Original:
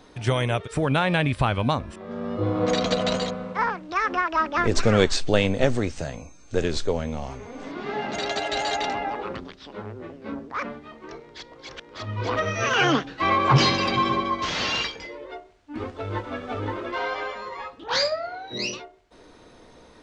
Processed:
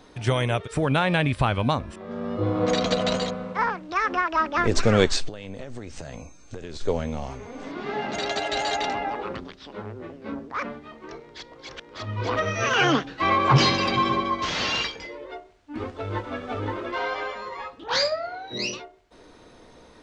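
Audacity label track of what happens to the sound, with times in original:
5.280000	6.810000	downward compressor 20 to 1, threshold −31 dBFS

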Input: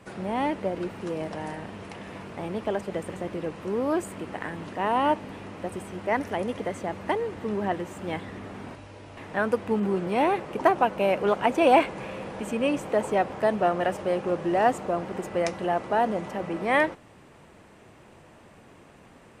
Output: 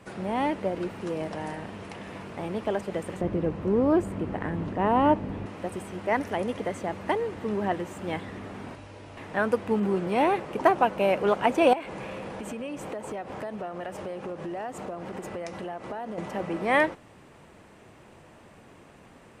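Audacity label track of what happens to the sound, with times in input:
3.210000	5.460000	spectral tilt −3 dB per octave
11.730000	16.180000	downward compressor, threshold −32 dBFS

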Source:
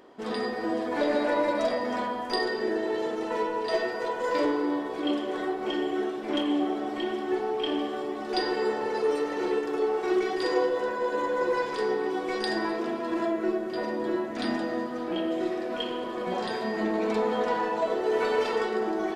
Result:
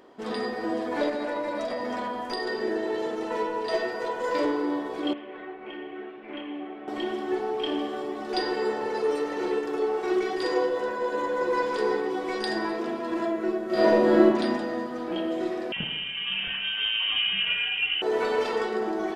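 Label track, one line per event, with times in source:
1.090000	2.470000	downward compressor, threshold −26 dBFS
5.130000	6.880000	transistor ladder low-pass 2,800 Hz, resonance 55%
11.180000	11.660000	delay throw 340 ms, feedback 35%, level −5.5 dB
13.660000	14.250000	thrown reverb, RT60 1.1 s, DRR −9.5 dB
15.720000	18.020000	voice inversion scrambler carrier 3,400 Hz

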